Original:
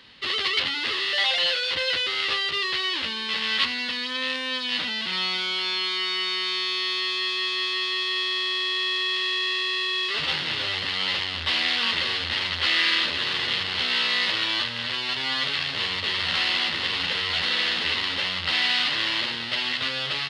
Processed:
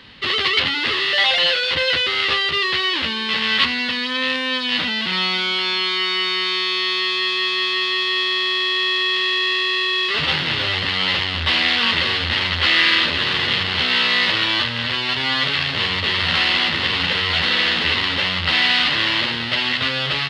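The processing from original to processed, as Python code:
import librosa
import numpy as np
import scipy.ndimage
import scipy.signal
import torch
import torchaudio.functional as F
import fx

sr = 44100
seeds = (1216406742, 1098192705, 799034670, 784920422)

y = fx.bass_treble(x, sr, bass_db=5, treble_db=-6)
y = F.gain(torch.from_numpy(y), 7.5).numpy()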